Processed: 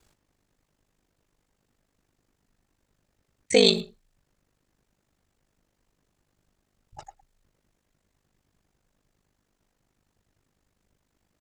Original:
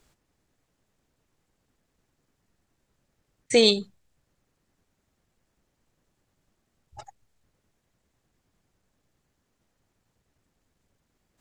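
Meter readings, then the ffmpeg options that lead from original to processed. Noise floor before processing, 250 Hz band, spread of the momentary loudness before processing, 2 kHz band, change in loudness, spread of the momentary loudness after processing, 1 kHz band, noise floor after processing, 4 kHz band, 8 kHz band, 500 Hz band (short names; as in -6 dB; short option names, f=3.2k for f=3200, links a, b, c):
-77 dBFS, 0.0 dB, 7 LU, +0.5 dB, 0.0 dB, 8 LU, 0.0 dB, -77 dBFS, 0.0 dB, 0.0 dB, 0.0 dB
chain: -filter_complex "[0:a]aeval=exprs='val(0)*sin(2*PI*25*n/s)':c=same,asplit=2[a][b];[b]adelay=110,highpass=300,lowpass=3.4k,asoftclip=type=hard:threshold=-15.5dB,volume=-17dB[c];[a][c]amix=inputs=2:normalize=0,volume=3dB"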